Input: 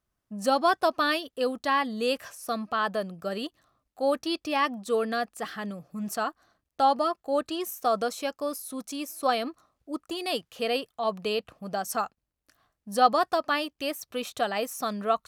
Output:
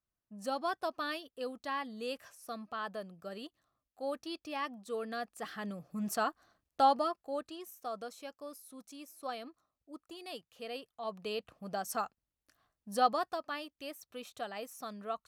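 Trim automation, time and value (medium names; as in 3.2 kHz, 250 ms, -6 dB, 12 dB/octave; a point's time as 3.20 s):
4.96 s -12 dB
5.92 s -3 dB
6.81 s -3 dB
7.62 s -15 dB
10.67 s -15 dB
11.64 s -6.5 dB
12.97 s -6.5 dB
13.45 s -13 dB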